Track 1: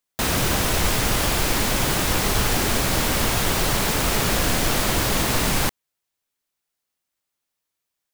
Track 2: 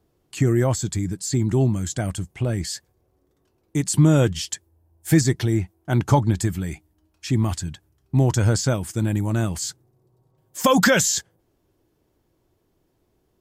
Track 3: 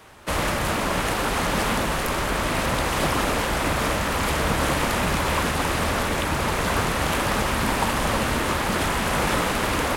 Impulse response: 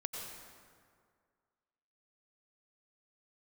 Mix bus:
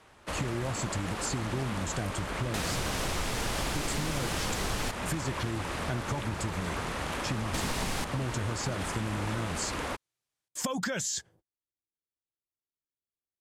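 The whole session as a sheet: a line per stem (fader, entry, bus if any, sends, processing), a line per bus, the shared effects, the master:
−4.0 dB, 2.35 s, muted 0:04.91–0:07.54, no send, no processing
−2.5 dB, 0.00 s, no send, noise gate −50 dBFS, range −38 dB; downward compressor, threshold −23 dBFS, peak gain reduction 11.5 dB
−9.5 dB, 0.00 s, no send, no processing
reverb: not used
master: low-pass filter 10,000 Hz 12 dB per octave; downward compressor 4 to 1, threshold −29 dBFS, peak gain reduction 8.5 dB

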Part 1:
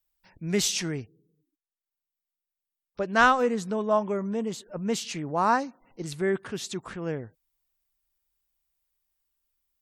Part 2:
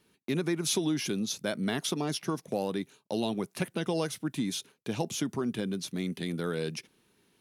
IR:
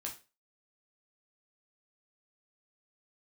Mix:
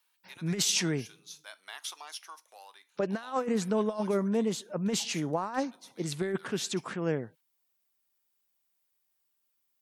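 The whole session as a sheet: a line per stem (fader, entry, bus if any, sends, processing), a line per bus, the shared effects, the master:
−1.0 dB, 0.00 s, no send, high-pass filter 130 Hz 24 dB per octave; compressor whose output falls as the input rises −27 dBFS, ratio −0.5
−6.0 dB, 0.00 s, send −13 dB, Chebyshev high-pass filter 890 Hz, order 3; automatic ducking −10 dB, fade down 0.90 s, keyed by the first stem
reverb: on, RT60 0.30 s, pre-delay 7 ms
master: no processing

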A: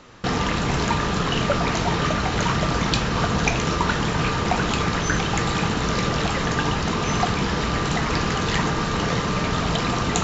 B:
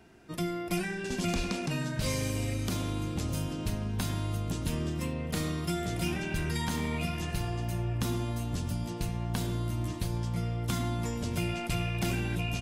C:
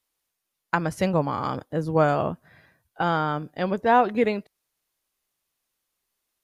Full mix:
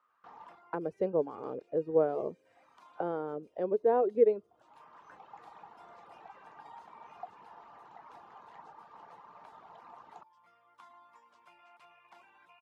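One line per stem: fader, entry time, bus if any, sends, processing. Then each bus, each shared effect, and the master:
−18.0 dB, 0.00 s, no send, automatic ducking −14 dB, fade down 0.20 s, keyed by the third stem
−5.0 dB, 0.10 s, no send, high-pass filter 1,100 Hz 6 dB per octave
+2.5 dB, 0.00 s, no send, no processing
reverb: not used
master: reverb reduction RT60 0.54 s; envelope filter 430–1,200 Hz, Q 4.5, down, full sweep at −27 dBFS

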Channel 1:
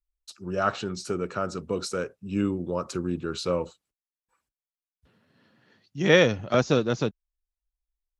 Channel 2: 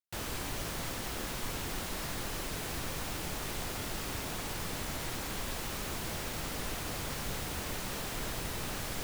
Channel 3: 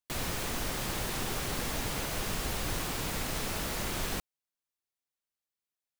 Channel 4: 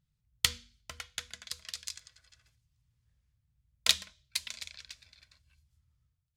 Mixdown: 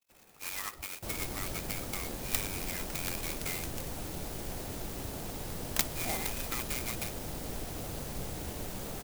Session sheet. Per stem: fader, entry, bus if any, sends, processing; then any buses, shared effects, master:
+3.0 dB, 0.00 s, bus A, no send, low-shelf EQ 390 Hz +4.5 dB; shaped tremolo saw up 8.1 Hz, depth 45%; phase shifter 0.29 Hz, delay 3.3 ms, feedback 47%
0.0 dB, 0.90 s, no bus, no send, no processing
−19.5 dB, 0.00 s, bus A, no send, no processing
−6.5 dB, 1.90 s, no bus, no send, flat-topped bell 1,900 Hz +10.5 dB 2.8 octaves
bus A: 0.0 dB, voice inversion scrambler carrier 2,600 Hz; downward compressor 6 to 1, threshold −27 dBFS, peak gain reduction 16.5 dB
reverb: not used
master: flat-topped bell 2,100 Hz −8.5 dB 2.4 octaves; converter with an unsteady clock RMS 0.094 ms

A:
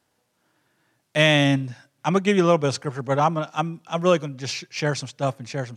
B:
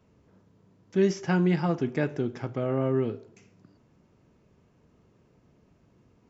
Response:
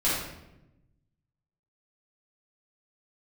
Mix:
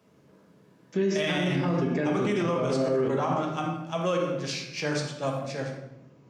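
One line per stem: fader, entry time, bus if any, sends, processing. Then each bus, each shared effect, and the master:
−8.5 dB, 0.00 s, send −9 dB, no processing
−0.5 dB, 0.00 s, send −9 dB, no processing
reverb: on, RT60 0.95 s, pre-delay 5 ms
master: high-pass filter 170 Hz 12 dB per octave; brickwall limiter −18 dBFS, peak gain reduction 11 dB

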